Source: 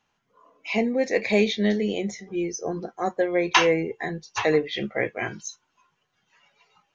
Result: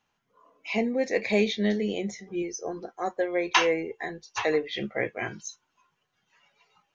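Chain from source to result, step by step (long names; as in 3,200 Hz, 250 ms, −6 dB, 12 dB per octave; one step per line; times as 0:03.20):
0:02.42–0:04.70: parametric band 160 Hz −9 dB 1.2 octaves
level −3 dB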